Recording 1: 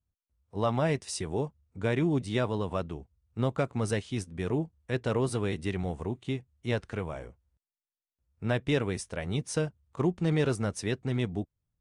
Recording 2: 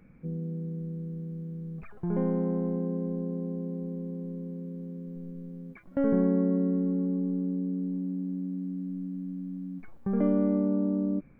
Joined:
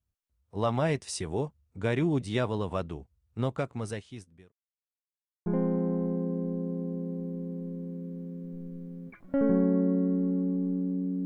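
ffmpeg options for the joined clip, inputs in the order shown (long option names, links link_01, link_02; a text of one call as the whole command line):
ffmpeg -i cue0.wav -i cue1.wav -filter_complex "[0:a]apad=whole_dur=11.25,atrim=end=11.25,asplit=2[link_01][link_02];[link_01]atrim=end=4.52,asetpts=PTS-STARTPTS,afade=type=out:start_time=3.28:duration=1.24[link_03];[link_02]atrim=start=4.52:end=5.46,asetpts=PTS-STARTPTS,volume=0[link_04];[1:a]atrim=start=2.09:end=7.88,asetpts=PTS-STARTPTS,afade=type=in:duration=0.004:curve=hsin[link_05];[link_03][link_04][link_05]concat=n=3:v=0:a=1" out.wav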